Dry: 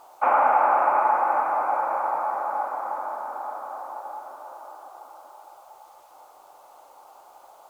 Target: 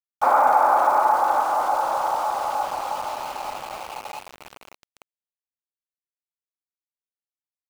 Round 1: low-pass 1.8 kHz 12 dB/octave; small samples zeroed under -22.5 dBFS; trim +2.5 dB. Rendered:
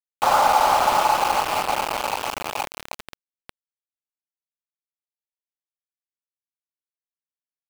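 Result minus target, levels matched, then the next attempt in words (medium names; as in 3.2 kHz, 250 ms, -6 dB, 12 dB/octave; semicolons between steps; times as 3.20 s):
small samples zeroed: distortion +13 dB
low-pass 1.8 kHz 12 dB/octave; small samples zeroed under -34.5 dBFS; trim +2.5 dB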